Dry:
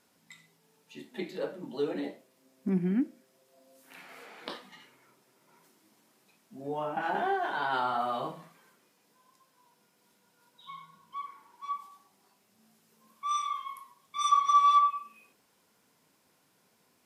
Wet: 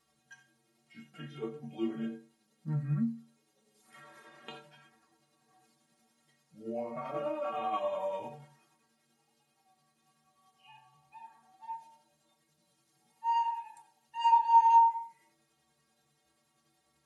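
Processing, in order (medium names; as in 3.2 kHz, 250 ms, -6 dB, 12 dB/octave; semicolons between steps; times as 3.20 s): rotating-head pitch shifter -4 st; inharmonic resonator 68 Hz, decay 0.53 s, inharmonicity 0.03; trim +6.5 dB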